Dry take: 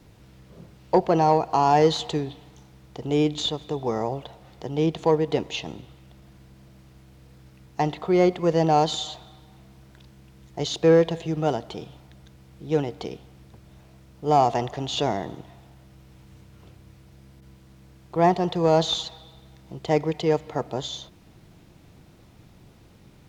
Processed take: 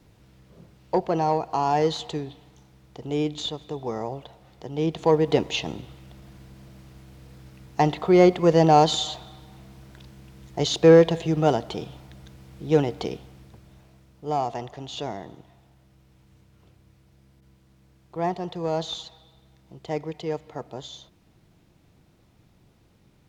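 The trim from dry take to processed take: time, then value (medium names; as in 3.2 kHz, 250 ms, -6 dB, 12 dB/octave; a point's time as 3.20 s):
4.70 s -4 dB
5.32 s +3.5 dB
13.11 s +3.5 dB
14.42 s -7.5 dB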